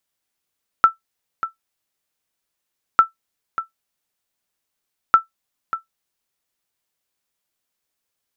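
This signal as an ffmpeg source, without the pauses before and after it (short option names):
-f lavfi -i "aevalsrc='0.794*(sin(2*PI*1330*mod(t,2.15))*exp(-6.91*mod(t,2.15)/0.13)+0.237*sin(2*PI*1330*max(mod(t,2.15)-0.59,0))*exp(-6.91*max(mod(t,2.15)-0.59,0)/0.13))':d=6.45:s=44100"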